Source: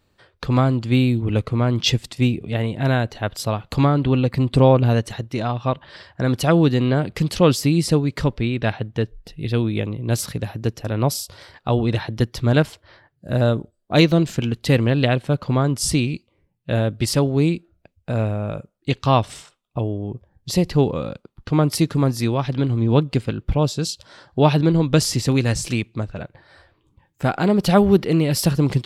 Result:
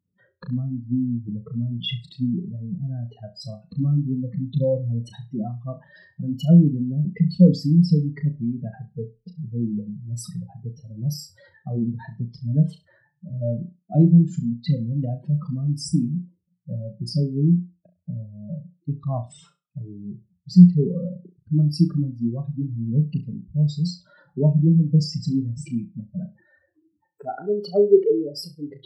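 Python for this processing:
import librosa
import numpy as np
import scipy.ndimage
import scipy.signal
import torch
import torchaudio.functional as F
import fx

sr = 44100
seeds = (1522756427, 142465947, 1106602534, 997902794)

y = fx.spec_expand(x, sr, power=3.7)
y = fx.room_flutter(y, sr, wall_m=5.8, rt60_s=0.24)
y = fx.filter_sweep_highpass(y, sr, from_hz=180.0, to_hz=420.0, start_s=26.16, end_s=27.26, q=7.4)
y = y * librosa.db_to_amplitude(-8.5)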